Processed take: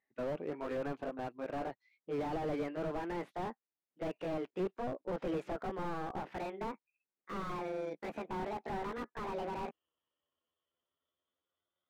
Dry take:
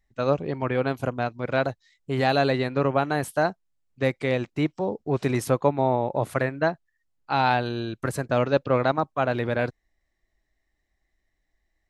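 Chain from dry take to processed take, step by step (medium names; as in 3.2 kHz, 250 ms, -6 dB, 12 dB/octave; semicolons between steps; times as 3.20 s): pitch bend over the whole clip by +10 st starting unshifted; Chebyshev band-pass 300–2300 Hz, order 2; slew-rate limiter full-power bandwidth 21 Hz; trim -6 dB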